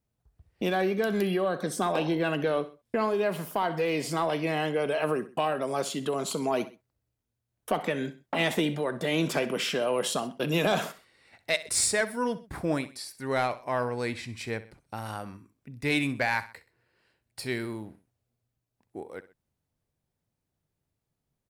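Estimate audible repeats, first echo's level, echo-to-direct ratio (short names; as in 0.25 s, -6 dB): 2, -16.0 dB, -15.5 dB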